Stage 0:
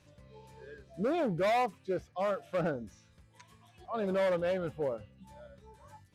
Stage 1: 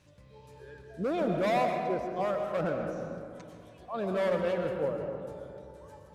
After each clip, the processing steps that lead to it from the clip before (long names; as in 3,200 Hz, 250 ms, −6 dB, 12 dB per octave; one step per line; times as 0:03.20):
comb and all-pass reverb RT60 2.6 s, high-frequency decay 0.35×, pre-delay 80 ms, DRR 3 dB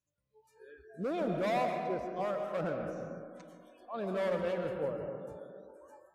noise reduction from a noise print of the clip's start 26 dB
level −4 dB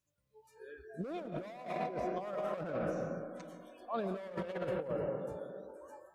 compressor whose output falls as the input rises −37 dBFS, ratio −0.5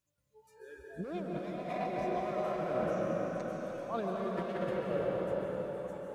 dense smooth reverb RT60 4.8 s, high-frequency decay 1×, pre-delay 120 ms, DRR −1.5 dB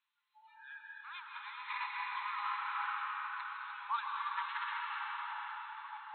brick-wall band-pass 810–4,200 Hz
level +7 dB